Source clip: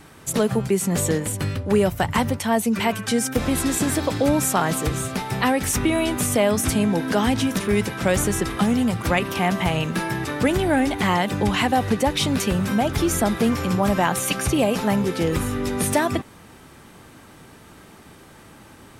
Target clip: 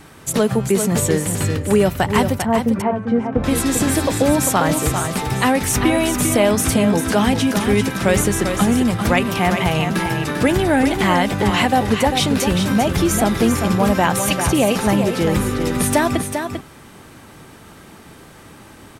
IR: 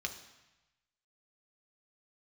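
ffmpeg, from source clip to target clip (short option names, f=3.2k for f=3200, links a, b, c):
-filter_complex "[0:a]asettb=1/sr,asplit=3[a][b][c];[a]atrim=end=2.424[d];[b]atrim=start=2.42:end=3.44,asetpts=PTS-STARTPTS,afade=t=in:d=0.004:c=qsin,afade=t=out:st=1.016:d=0.004:c=qsin,lowpass=1k[e];[c]atrim=start=3.436[f];[d][e]acrossfade=d=0.004:c1=hsin:c2=qsin[g];[g][f]acrossfade=d=0.004:c1=qsin:c2=hsin,asplit=2[h][i];[i]aecho=0:1:396:0.447[j];[h][j]amix=inputs=2:normalize=0,volume=3.5dB"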